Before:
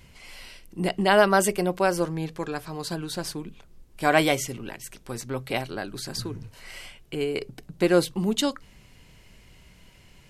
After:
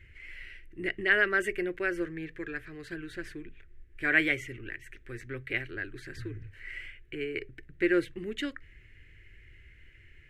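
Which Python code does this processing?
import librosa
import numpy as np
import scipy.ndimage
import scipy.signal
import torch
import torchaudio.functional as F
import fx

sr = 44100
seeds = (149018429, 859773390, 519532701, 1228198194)

y = fx.curve_eq(x, sr, hz=(100.0, 190.0, 350.0, 910.0, 1800.0, 4800.0, 7300.0, 12000.0), db=(0, -19, -3, -28, 7, -22, -20, -23))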